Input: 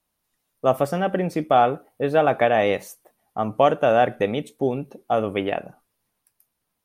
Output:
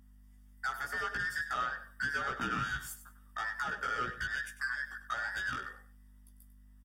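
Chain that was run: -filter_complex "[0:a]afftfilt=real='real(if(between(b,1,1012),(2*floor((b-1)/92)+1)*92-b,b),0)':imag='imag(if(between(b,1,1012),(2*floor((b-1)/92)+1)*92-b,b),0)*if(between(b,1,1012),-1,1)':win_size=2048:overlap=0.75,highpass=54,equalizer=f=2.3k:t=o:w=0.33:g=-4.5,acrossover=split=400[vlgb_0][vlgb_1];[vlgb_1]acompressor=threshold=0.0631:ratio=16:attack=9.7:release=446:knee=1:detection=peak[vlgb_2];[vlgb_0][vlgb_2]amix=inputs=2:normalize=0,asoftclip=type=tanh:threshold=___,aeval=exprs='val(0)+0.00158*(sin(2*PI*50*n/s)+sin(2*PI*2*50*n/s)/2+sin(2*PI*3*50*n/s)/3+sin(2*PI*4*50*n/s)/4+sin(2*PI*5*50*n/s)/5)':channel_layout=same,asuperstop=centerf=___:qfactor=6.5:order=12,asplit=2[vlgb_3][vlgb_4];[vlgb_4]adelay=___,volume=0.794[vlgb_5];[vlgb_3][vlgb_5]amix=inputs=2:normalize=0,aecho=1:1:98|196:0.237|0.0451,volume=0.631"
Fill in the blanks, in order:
0.0376, 4100, 16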